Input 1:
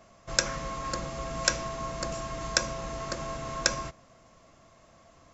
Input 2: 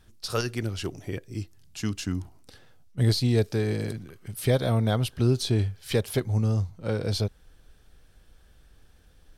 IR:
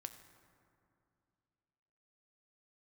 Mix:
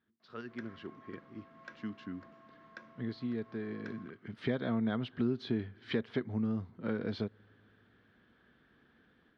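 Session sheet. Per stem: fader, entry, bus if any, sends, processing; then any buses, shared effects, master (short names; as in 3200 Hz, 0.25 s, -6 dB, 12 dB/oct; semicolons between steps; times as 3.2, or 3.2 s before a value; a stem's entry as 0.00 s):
-14.5 dB, 0.20 s, no send, auto duck -11 dB, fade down 0.50 s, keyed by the second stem
3.83 s -17 dB -> 4.07 s -6 dB, 0.00 s, send -18.5 dB, dry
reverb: on, RT60 2.6 s, pre-delay 4 ms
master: AGC gain up to 5.5 dB; speaker cabinet 210–3000 Hz, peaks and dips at 230 Hz +8 dB, 550 Hz -7 dB, 800 Hz -6 dB, 1700 Hz +3 dB, 2600 Hz -7 dB; compressor 2:1, threshold -34 dBFS, peak gain reduction 9 dB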